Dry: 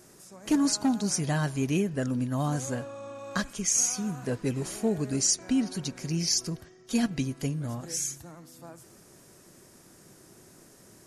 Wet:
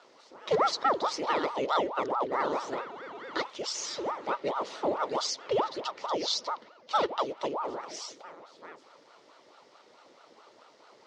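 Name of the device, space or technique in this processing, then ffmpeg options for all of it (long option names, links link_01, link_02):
voice changer toy: -af "aeval=exprs='val(0)*sin(2*PI*610*n/s+610*0.8/4.6*sin(2*PI*4.6*n/s))':channel_layout=same,highpass=470,equalizer=frequency=740:width_type=q:width=4:gain=-8,equalizer=frequency=1100:width_type=q:width=4:gain=-3,equalizer=frequency=1600:width_type=q:width=4:gain=-9,equalizer=frequency=2500:width_type=q:width=4:gain=-6,lowpass=frequency=4100:width=0.5412,lowpass=frequency=4100:width=1.3066,volume=7.5dB"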